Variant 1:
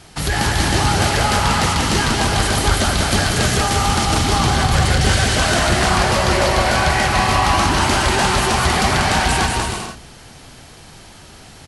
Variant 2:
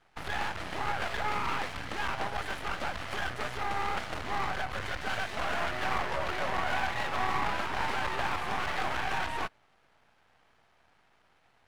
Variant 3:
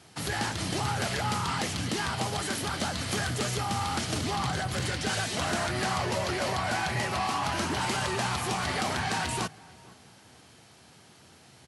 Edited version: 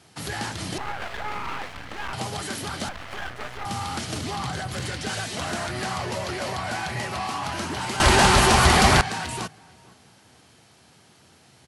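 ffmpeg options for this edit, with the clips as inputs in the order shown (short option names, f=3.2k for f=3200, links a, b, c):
-filter_complex "[1:a]asplit=2[a][b];[2:a]asplit=4[c][d][e][f];[c]atrim=end=0.782[g];[a]atrim=start=0.778:end=2.132[h];[d]atrim=start=2.128:end=2.892[i];[b]atrim=start=2.888:end=3.652[j];[e]atrim=start=3.648:end=8.002[k];[0:a]atrim=start=7.998:end=9.012[l];[f]atrim=start=9.008[m];[g][h]acrossfade=d=0.004:c1=hsin:c2=hsin[n];[n][i]acrossfade=d=0.004:c1=hsin:c2=hsin[o];[o][j]acrossfade=d=0.004:c1=hsin:c2=hsin[p];[p][k]acrossfade=d=0.004:c1=hsin:c2=hsin[q];[q][l]acrossfade=d=0.004:c1=hsin:c2=hsin[r];[r][m]acrossfade=d=0.004:c1=hsin:c2=hsin"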